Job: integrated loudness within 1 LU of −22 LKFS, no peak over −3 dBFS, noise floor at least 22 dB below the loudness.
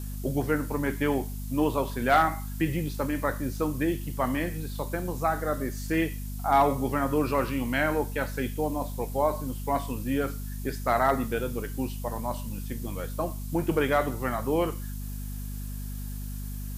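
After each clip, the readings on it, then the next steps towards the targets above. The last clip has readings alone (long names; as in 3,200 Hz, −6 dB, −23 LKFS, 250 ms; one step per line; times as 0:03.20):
mains hum 50 Hz; hum harmonics up to 250 Hz; level of the hum −33 dBFS; background noise floor −35 dBFS; target noise floor −51 dBFS; integrated loudness −29.0 LKFS; sample peak −11.5 dBFS; target loudness −22.0 LKFS
→ mains-hum notches 50/100/150/200/250 Hz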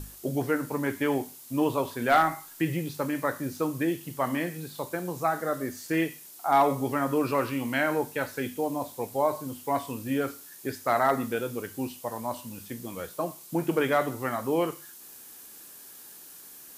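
mains hum none found; background noise floor −48 dBFS; target noise floor −51 dBFS
→ noise reduction from a noise print 6 dB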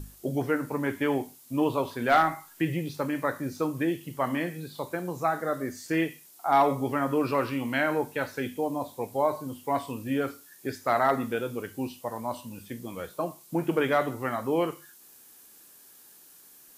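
background noise floor −54 dBFS; integrated loudness −29.0 LKFS; sample peak −12.5 dBFS; target loudness −22.0 LKFS
→ level +7 dB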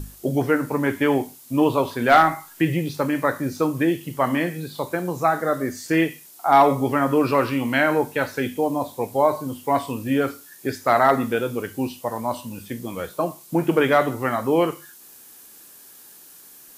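integrated loudness −22.0 LKFS; sample peak −5.5 dBFS; background noise floor −47 dBFS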